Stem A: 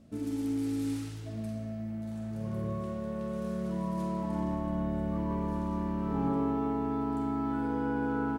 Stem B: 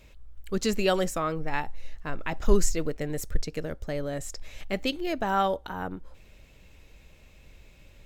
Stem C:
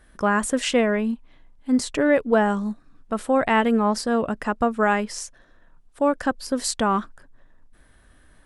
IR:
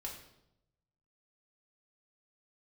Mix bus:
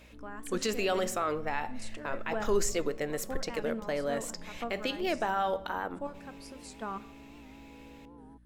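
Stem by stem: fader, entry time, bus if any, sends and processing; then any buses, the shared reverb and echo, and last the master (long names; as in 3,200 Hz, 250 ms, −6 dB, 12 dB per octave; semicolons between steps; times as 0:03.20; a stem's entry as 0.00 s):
−19.0 dB, 0.00 s, no bus, no send, Butterworth low-pass 1,200 Hz 96 dB per octave; speech leveller
+2.0 dB, 0.00 s, bus A, send −12 dB, bass and treble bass −10 dB, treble −4 dB
−10.5 dB, 0.00 s, bus A, send −14.5 dB, square-wave tremolo 2.2 Hz, depth 60%, duty 35%; mains hum 60 Hz, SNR 16 dB; automatic ducking −7 dB, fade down 0.30 s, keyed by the second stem
bus A: 0.0 dB, low-shelf EQ 180 Hz −9 dB; brickwall limiter −23 dBFS, peak gain reduction 12 dB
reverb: on, RT60 0.85 s, pre-delay 3 ms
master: wow of a warped record 78 rpm, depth 100 cents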